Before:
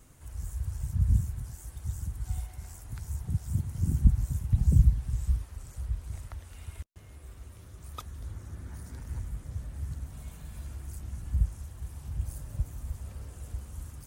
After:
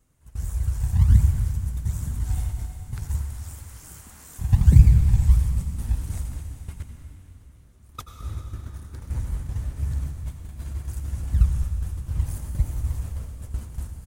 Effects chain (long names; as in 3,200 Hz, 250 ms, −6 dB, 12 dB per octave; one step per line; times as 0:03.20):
noise gate −39 dBFS, range −17 dB
0:03.21–0:04.39: Chebyshev high-pass filter 1,200 Hz, order 2
0:05.31–0:06.31: high-shelf EQ 5,100 Hz +8 dB
in parallel at −12 dB: sample-and-hold swept by an LFO 35×, swing 100% 1.4 Hz
on the sum: echo with shifted repeats 200 ms, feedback 62%, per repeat −58 Hz, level −19 dB
on a send at −4.5 dB: convolution reverb RT60 2.8 s, pre-delay 76 ms
on the sum: level +5.5 dB